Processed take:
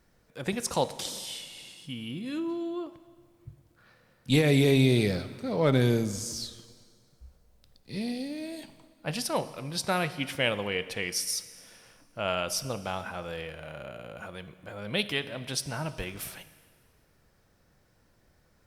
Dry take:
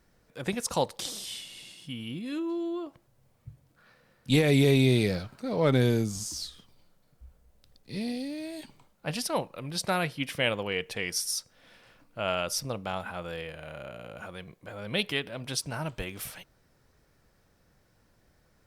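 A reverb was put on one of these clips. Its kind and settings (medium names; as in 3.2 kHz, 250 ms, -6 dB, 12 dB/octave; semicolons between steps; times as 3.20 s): plate-style reverb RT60 1.8 s, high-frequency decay 0.95×, DRR 13 dB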